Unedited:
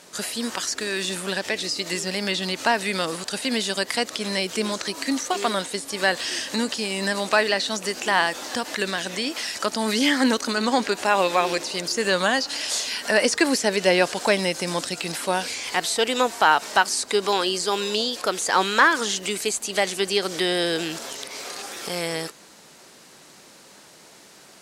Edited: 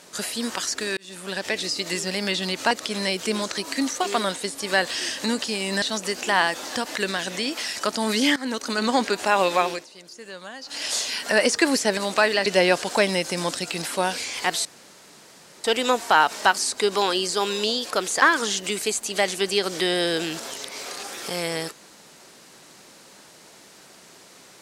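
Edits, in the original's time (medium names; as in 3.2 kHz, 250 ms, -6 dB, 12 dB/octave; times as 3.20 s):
0.97–1.50 s: fade in linear
2.71–4.01 s: delete
7.12–7.61 s: move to 13.76 s
10.15–10.60 s: fade in linear, from -17.5 dB
11.39–12.65 s: dip -17.5 dB, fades 0.26 s
15.95 s: insert room tone 0.99 s
18.53–18.81 s: delete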